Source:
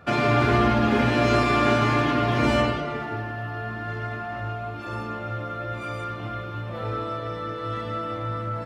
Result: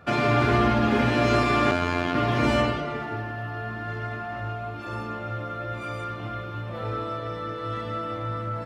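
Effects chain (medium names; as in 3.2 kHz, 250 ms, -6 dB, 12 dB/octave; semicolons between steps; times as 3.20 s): 1.71–2.15 s: robot voice 87.7 Hz; trim -1 dB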